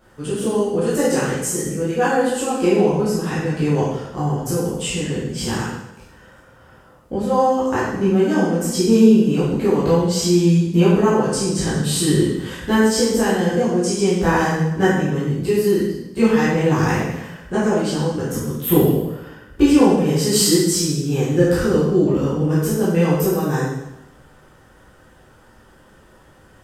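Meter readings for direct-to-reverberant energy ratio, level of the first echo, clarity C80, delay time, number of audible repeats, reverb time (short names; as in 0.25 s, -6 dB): -10.5 dB, none, 3.0 dB, none, none, 0.95 s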